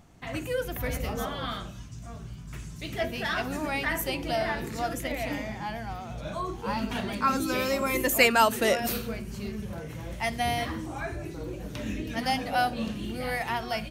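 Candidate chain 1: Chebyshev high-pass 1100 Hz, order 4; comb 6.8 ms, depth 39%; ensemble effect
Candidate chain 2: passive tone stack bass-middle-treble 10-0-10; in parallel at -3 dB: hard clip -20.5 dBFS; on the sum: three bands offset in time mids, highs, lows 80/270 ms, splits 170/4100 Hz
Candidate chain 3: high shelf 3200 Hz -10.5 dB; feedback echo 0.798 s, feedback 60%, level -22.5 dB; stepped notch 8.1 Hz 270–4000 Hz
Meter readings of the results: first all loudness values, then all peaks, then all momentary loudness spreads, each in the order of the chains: -34.5, -31.5, -33.0 LUFS; -9.5, -8.0, -11.0 dBFS; 20, 17, 10 LU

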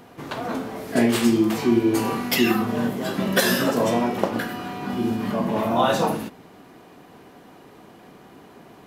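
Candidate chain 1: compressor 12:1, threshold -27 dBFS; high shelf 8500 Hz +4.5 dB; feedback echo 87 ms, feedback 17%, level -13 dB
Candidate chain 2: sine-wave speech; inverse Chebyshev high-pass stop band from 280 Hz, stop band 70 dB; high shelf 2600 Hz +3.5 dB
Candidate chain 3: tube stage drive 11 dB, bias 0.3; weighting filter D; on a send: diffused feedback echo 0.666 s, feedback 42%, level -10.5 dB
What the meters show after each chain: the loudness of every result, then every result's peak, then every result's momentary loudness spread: -31.0, -32.0, -21.0 LUFS; -14.5, -11.5, -2.5 dBFS; 18, 19, 18 LU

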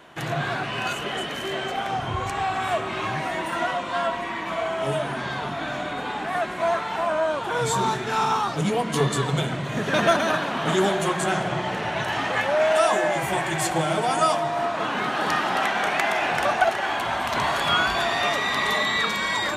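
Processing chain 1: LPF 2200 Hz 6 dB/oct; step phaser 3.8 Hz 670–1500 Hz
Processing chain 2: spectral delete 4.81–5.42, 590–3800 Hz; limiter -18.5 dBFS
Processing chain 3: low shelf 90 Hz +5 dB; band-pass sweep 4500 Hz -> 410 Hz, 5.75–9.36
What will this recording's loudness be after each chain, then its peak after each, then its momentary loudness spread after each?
-28.0, -27.0, -33.5 LUFS; -10.0, -18.5, -14.5 dBFS; 8, 3, 14 LU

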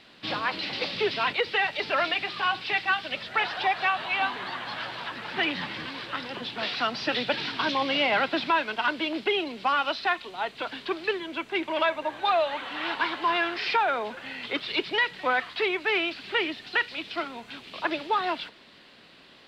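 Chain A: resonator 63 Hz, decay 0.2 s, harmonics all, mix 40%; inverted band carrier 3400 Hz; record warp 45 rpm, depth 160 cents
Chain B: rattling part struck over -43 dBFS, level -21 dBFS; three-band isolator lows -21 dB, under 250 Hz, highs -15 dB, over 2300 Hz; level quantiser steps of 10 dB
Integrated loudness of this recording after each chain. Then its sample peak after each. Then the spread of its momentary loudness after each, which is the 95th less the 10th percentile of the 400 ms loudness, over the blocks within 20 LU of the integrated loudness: -28.5, -34.5 LUFS; -16.0, -19.0 dBFS; 10, 8 LU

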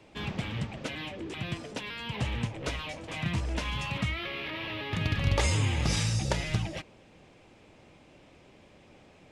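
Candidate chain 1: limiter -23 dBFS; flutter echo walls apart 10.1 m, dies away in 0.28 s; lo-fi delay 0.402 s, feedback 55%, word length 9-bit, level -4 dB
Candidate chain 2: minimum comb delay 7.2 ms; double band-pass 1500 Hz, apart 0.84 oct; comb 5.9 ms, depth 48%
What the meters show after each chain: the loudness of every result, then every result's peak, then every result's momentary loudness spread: -32.5, -43.5 LUFS; -18.0, -24.0 dBFS; 11, 11 LU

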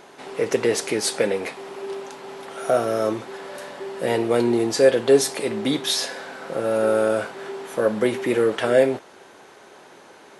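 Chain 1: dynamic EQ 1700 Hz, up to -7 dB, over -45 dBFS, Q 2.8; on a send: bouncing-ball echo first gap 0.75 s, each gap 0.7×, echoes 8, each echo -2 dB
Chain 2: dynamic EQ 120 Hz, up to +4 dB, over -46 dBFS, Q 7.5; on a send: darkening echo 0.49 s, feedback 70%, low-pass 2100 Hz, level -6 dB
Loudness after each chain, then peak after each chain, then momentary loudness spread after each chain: -19.0, -21.5 LUFS; -2.0, -3.0 dBFS; 7, 11 LU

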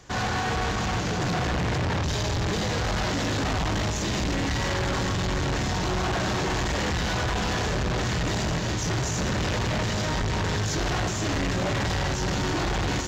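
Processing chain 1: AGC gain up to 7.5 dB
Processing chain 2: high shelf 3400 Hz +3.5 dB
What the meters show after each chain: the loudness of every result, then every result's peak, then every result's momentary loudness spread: -19.0, -26.0 LUFS; -15.5, -21.0 dBFS; 1, 1 LU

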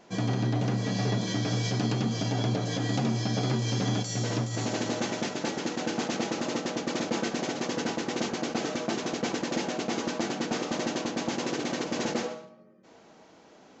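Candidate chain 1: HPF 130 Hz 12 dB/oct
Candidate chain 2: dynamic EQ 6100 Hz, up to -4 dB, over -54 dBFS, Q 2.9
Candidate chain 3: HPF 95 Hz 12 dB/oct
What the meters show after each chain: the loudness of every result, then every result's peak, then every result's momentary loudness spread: -30.5, -30.0, -30.5 LUFS; -16.5, -15.5, -16.0 dBFS; 2, 3, 3 LU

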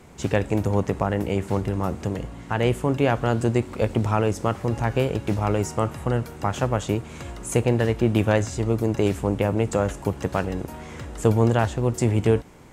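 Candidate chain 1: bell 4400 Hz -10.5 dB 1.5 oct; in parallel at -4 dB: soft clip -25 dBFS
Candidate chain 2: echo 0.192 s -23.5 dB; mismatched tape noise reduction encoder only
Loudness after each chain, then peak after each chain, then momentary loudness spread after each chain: -22.0, -24.0 LUFS; -7.5, -8.0 dBFS; 7, 7 LU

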